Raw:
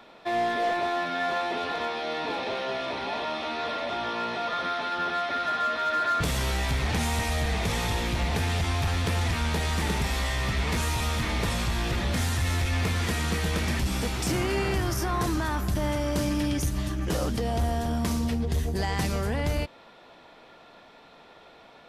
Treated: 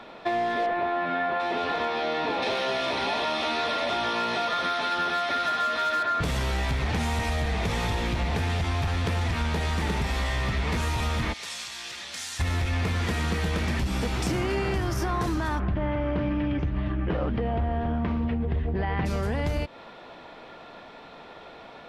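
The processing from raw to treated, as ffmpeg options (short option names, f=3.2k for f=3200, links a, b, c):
-filter_complex "[0:a]asettb=1/sr,asplit=3[a][b][c];[a]atrim=end=0.664[d];[b]atrim=start=0.66:end=1.4,asetpts=PTS-STARTPTS,afade=t=in:d=0.004:c=qsin,afade=t=out:st=0.736:d=0.004:c=qsin,lowpass=2.6k[e];[c]atrim=start=1.396[f];[d][e]acrossfade=d=0.004:c1=hsin:c2=qsin[g];[g][f]acrossfade=d=0.004:c1=qsin:c2=hsin,asettb=1/sr,asplit=3[h][i][j];[h]atrim=end=2.424[k];[i]atrim=start=2.42:end=6.03,asetpts=PTS-STARTPTS,afade=t=in:d=0.004:c=qsin,afade=t=out:st=3.606:d=0.004:c=qsin,aemphasis=mode=production:type=75kf[l];[j]atrim=start=6.026[m];[k][l]acrossfade=d=0.004:c1=hsin:c2=qsin[n];[n][m]acrossfade=d=0.004:c1=qsin:c2=hsin,asplit=3[o][p][q];[o]afade=t=out:st=11.32:d=0.02[r];[p]bandpass=f=6.9k:t=q:w=1,afade=t=in:st=11.32:d=0.02,afade=t=out:st=12.39:d=0.02[s];[q]afade=t=in:st=12.39:d=0.02[t];[r][s][t]amix=inputs=3:normalize=0,asplit=3[u][v][w];[u]afade=t=out:st=15.58:d=0.02[x];[v]lowpass=f=2.8k:w=0.5412,lowpass=f=2.8k:w=1.3066,afade=t=in:st=15.58:d=0.02,afade=t=out:st=19.05:d=0.02[y];[w]afade=t=in:st=19.05:d=0.02[z];[x][y][z]amix=inputs=3:normalize=0,lowpass=f=3.7k:p=1,acompressor=threshold=-31dB:ratio=6,volume=7dB"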